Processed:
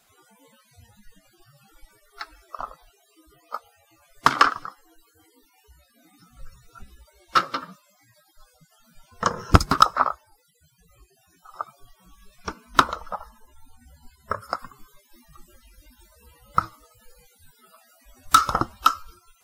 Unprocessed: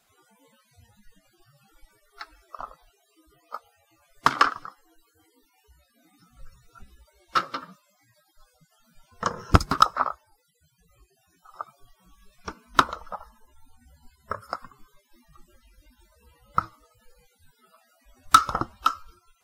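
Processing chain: high shelf 6000 Hz +2 dB, from 14.59 s +7 dB; maximiser +5 dB; gain -1 dB

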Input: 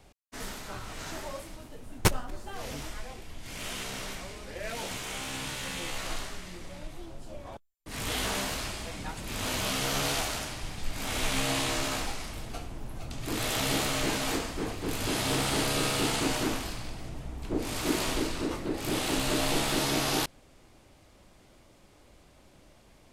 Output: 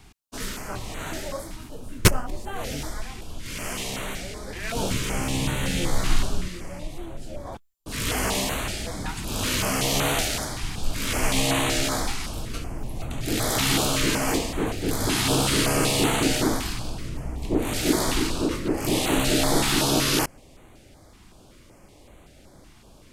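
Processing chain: 4.75–6.48 low shelf 370 Hz +10 dB; stepped notch 5.3 Hz 560–5100 Hz; gain +7.5 dB

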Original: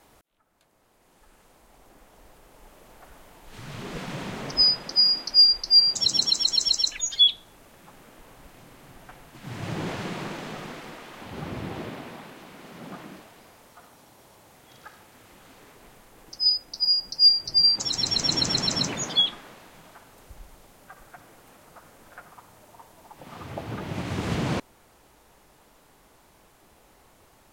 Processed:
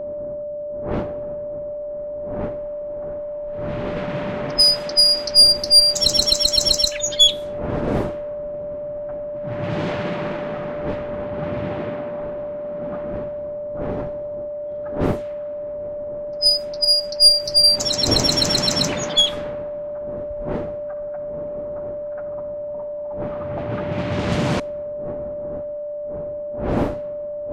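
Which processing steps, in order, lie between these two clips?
one diode to ground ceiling -18 dBFS; wind noise 450 Hz -40 dBFS; low-pass opened by the level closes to 750 Hz, open at -22.5 dBFS; whine 590 Hz -33 dBFS; gain +7 dB

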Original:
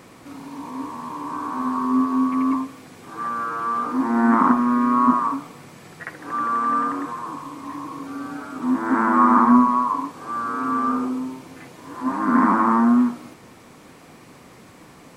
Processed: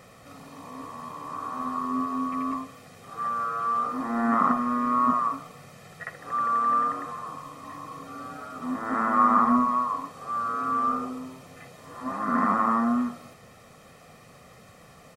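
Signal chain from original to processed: comb 1.6 ms, depth 70%; gain -5.5 dB

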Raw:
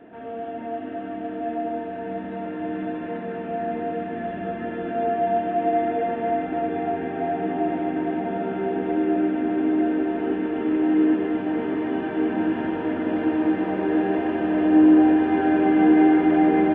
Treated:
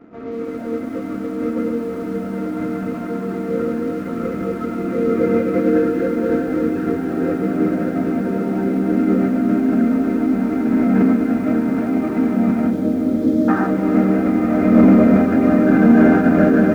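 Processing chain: spectral gain 13.22–13.67, 780–2500 Hz +11 dB; formant shift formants -5 st; dynamic EQ 960 Hz, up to -5 dB, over -37 dBFS, Q 1.4; sample leveller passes 1; spectral gain 12.71–13.49, 630–3100 Hz -29 dB; on a send: diffused feedback echo 0.527 s, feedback 63%, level -13 dB; on the sum: downsampling 16000 Hz; lo-fi delay 0.186 s, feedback 80%, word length 7-bit, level -14.5 dB; gain +2.5 dB

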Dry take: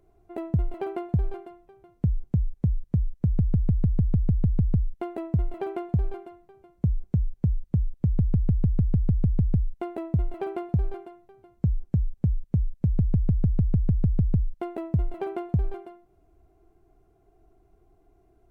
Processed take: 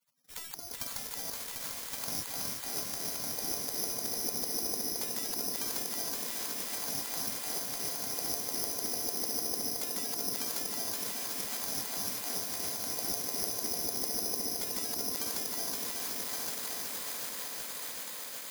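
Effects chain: switching spikes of -27 dBFS; recorder AGC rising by 22 dB/s; dynamic EQ 320 Hz, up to +5 dB, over -41 dBFS, Q 1.3; compressor, threshold -20 dBFS, peak gain reduction 6 dB; diffused feedback echo 0.755 s, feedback 70%, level -7.5 dB; spectral gate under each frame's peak -25 dB weak; low shelf 430 Hz +5 dB; careless resampling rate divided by 8×, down filtered, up zero stuff; multi-head echo 0.373 s, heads all three, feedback 60%, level -7 dB; gain -4 dB

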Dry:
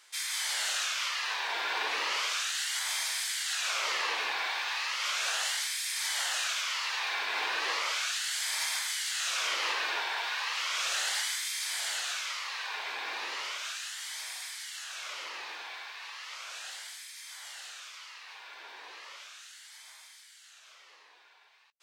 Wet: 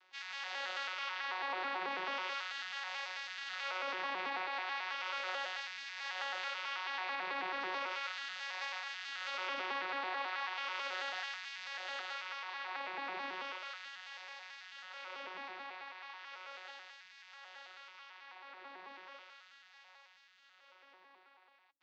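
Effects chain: arpeggiated vocoder bare fifth, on F#3, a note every 0.109 s; Bessel low-pass 3400 Hz, order 6; limiter -26 dBFS, peak gain reduction 4 dB; gain -4.5 dB

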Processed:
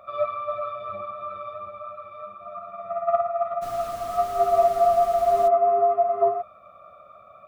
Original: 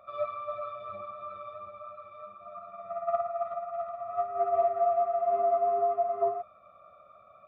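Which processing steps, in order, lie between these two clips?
3.61–5.47 added noise pink -50 dBFS; gain +7 dB

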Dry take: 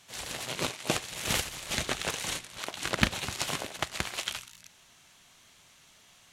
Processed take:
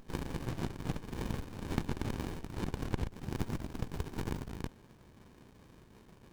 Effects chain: spectral gain 3.08–4.53, 420–4500 Hz -14 dB; compressor 4:1, threshold -42 dBFS, peak gain reduction 20 dB; running maximum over 65 samples; gain +7 dB

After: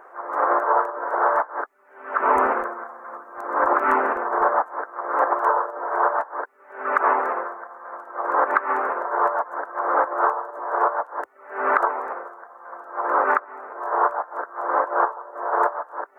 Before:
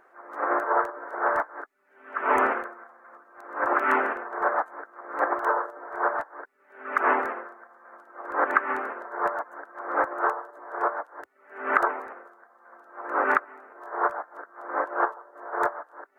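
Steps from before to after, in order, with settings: graphic EQ 125/500/1000/4000 Hz -10/+6/+9/-6 dB; compressor 2.5:1, threshold -26 dBFS, peak gain reduction 12 dB; 2.2–4.68 tone controls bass +13 dB, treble +4 dB; gain +5.5 dB

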